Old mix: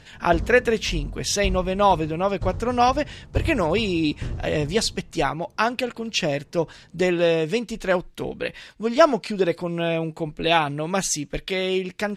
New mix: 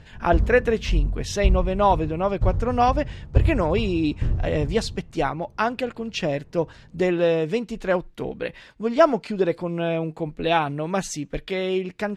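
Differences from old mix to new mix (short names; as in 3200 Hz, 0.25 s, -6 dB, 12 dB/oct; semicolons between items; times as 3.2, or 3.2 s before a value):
background: add low shelf 120 Hz +10 dB; master: add high shelf 2800 Hz -10 dB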